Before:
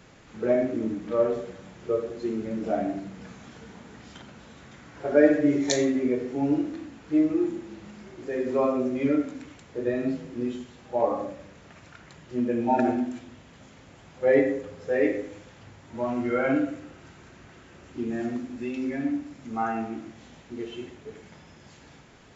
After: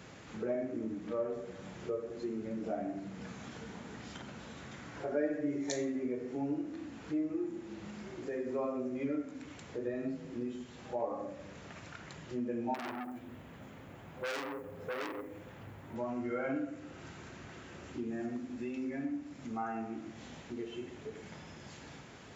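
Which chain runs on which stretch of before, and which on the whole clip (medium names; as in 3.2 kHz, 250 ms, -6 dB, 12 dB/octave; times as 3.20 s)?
12.74–15.96 s: modulation noise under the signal 24 dB + peaking EQ 5.6 kHz -12.5 dB 1.5 oct + transformer saturation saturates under 3.9 kHz
whole clip: high-pass 61 Hz; dynamic bell 3.6 kHz, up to -4 dB, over -52 dBFS, Q 1.6; compression 2:1, threshold -44 dBFS; trim +1 dB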